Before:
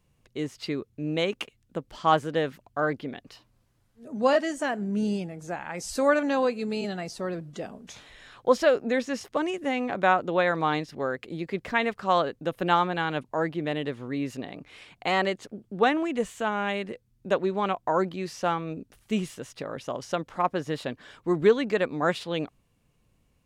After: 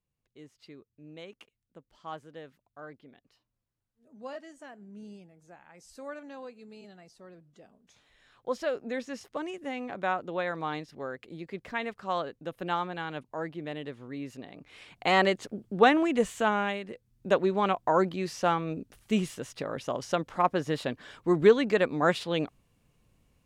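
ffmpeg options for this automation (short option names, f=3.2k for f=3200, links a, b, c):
-af "volume=9.5dB,afade=t=in:st=7.83:d=1.13:silence=0.281838,afade=t=in:st=14.52:d=0.67:silence=0.316228,afade=t=out:st=16.51:d=0.3:silence=0.354813,afade=t=in:st=16.81:d=0.47:silence=0.421697"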